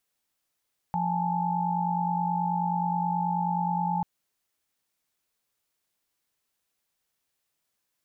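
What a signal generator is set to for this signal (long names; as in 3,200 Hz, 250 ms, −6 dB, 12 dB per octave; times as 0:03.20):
held notes F3/G#5/A5 sine, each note −29 dBFS 3.09 s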